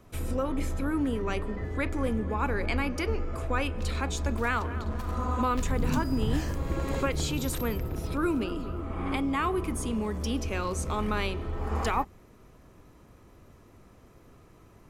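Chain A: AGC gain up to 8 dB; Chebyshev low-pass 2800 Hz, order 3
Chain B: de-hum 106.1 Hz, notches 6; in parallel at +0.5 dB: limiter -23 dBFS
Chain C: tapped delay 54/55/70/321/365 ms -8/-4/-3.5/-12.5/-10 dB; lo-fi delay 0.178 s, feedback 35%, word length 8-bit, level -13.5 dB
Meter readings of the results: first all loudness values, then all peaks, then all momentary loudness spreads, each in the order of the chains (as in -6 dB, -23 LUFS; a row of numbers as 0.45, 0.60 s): -23.0, -25.5, -26.5 LUFS; -6.5, -11.0, -10.0 dBFS; 6, 4, 5 LU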